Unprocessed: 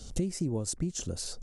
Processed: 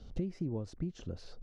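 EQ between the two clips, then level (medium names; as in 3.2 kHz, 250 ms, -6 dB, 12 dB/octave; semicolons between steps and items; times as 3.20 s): distance through air 290 m; -4.5 dB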